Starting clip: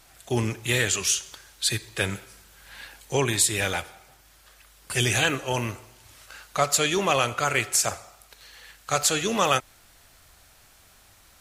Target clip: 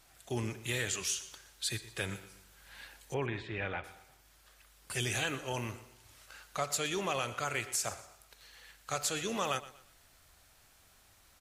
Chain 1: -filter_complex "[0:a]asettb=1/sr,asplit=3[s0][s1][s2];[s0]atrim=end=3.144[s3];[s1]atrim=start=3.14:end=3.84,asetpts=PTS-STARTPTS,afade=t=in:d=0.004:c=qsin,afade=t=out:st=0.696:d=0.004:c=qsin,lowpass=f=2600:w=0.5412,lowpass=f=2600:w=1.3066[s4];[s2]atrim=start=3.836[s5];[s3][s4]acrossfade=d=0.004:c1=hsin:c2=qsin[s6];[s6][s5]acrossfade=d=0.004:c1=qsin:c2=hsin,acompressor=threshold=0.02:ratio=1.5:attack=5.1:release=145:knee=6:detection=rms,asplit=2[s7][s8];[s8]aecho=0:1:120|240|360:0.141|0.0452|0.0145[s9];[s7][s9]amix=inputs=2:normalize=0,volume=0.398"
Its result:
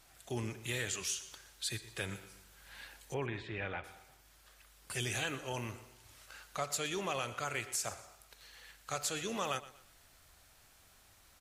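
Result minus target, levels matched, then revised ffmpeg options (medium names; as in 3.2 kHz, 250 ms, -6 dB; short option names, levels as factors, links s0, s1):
compression: peak gain reduction +3 dB
-filter_complex "[0:a]asettb=1/sr,asplit=3[s0][s1][s2];[s0]atrim=end=3.144[s3];[s1]atrim=start=3.14:end=3.84,asetpts=PTS-STARTPTS,afade=t=in:d=0.004:c=qsin,afade=t=out:st=0.696:d=0.004:c=qsin,lowpass=f=2600:w=0.5412,lowpass=f=2600:w=1.3066[s4];[s2]atrim=start=3.836[s5];[s3][s4]acrossfade=d=0.004:c1=hsin:c2=qsin[s6];[s6][s5]acrossfade=d=0.004:c1=qsin:c2=hsin,acompressor=threshold=0.0531:ratio=1.5:attack=5.1:release=145:knee=6:detection=rms,asplit=2[s7][s8];[s8]aecho=0:1:120|240|360:0.141|0.0452|0.0145[s9];[s7][s9]amix=inputs=2:normalize=0,volume=0.398"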